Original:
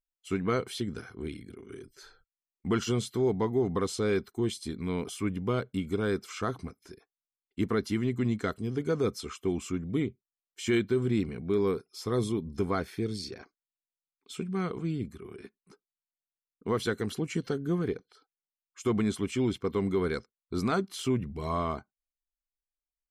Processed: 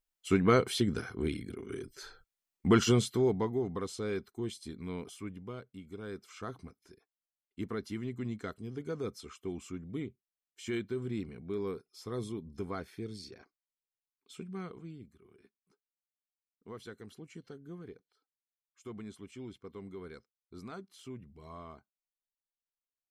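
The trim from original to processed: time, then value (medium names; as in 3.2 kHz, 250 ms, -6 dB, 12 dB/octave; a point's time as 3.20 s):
2.87 s +4 dB
3.74 s -7.5 dB
4.95 s -7.5 dB
5.74 s -16.5 dB
6.53 s -9 dB
14.55 s -9 dB
15.06 s -17 dB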